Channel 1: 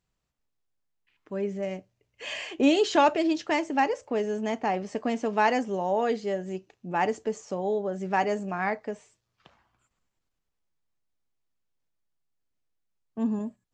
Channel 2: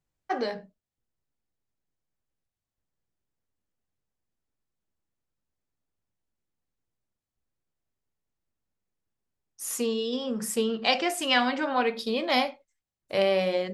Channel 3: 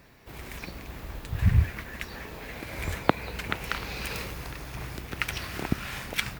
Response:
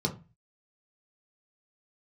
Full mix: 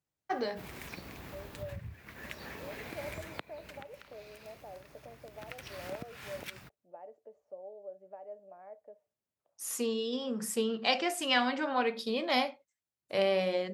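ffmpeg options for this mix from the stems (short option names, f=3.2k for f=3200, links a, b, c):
-filter_complex "[0:a]acompressor=threshold=-25dB:ratio=6,bandpass=f=590:t=q:w=6.9:csg=0,volume=-9dB[a];[1:a]volume=-4.5dB[b];[2:a]acompressor=threshold=-35dB:ratio=8,adelay=300,volume=7dB,afade=t=out:st=3.22:d=0.7:silence=0.237137,afade=t=in:st=5.26:d=0.36:silence=0.316228[c];[a][b][c]amix=inputs=3:normalize=0,highpass=88"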